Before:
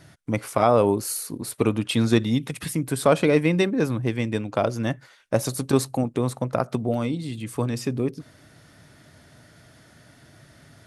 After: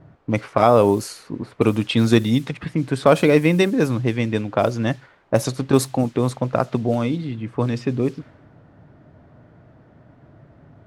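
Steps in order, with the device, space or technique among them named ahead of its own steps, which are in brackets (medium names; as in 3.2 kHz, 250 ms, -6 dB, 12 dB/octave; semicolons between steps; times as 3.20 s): cassette deck with a dynamic noise filter (white noise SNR 27 dB; level-controlled noise filter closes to 760 Hz, open at -17 dBFS); trim +4 dB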